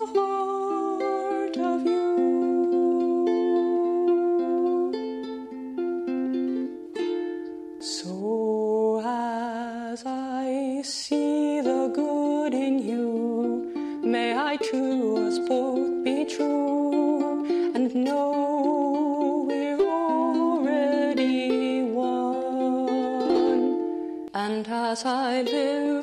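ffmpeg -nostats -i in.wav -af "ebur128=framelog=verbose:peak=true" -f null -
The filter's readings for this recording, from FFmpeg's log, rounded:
Integrated loudness:
  I:         -25.4 LUFS
  Threshold: -35.4 LUFS
Loudness range:
  LRA:         4.2 LU
  Threshold: -45.4 LUFS
  LRA low:   -28.0 LUFS
  LRA high:  -23.8 LUFS
True peak:
  Peak:      -12.3 dBFS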